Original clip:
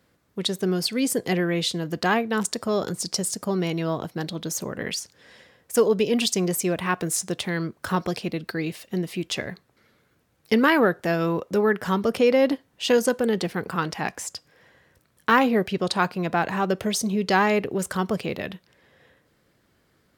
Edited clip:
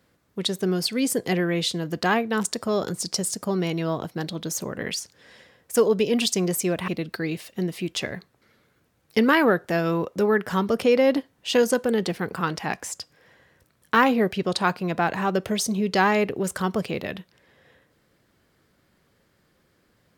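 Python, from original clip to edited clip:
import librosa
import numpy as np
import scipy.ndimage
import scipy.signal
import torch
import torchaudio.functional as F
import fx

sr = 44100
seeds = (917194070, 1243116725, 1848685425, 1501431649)

y = fx.edit(x, sr, fx.cut(start_s=6.88, length_s=1.35), tone=tone)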